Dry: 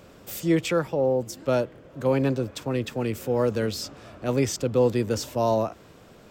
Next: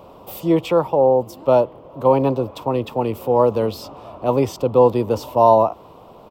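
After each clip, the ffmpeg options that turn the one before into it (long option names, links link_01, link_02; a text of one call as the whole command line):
ffmpeg -i in.wav -af "firequalizer=gain_entry='entry(200,0);entry(980,14);entry(1600,-12);entry(2800,0);entry(6800,-12);entry(12000,-1)':delay=0.05:min_phase=1,volume=2.5dB" out.wav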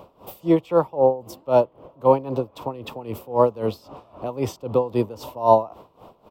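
ffmpeg -i in.wav -af "aeval=exprs='val(0)*pow(10,-18*(0.5-0.5*cos(2*PI*3.8*n/s))/20)':channel_layout=same" out.wav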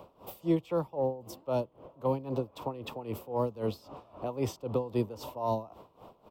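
ffmpeg -i in.wav -filter_complex "[0:a]acrossover=split=280|3000[link_01][link_02][link_03];[link_02]acompressor=threshold=-24dB:ratio=6[link_04];[link_01][link_04][link_03]amix=inputs=3:normalize=0,volume=-5.5dB" out.wav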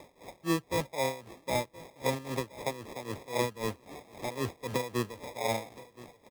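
ffmpeg -i in.wav -af "lowpass=frequency=1400:width_type=q:width=2.8,acrusher=samples=30:mix=1:aa=0.000001,aecho=1:1:1021:0.106,volume=-2.5dB" out.wav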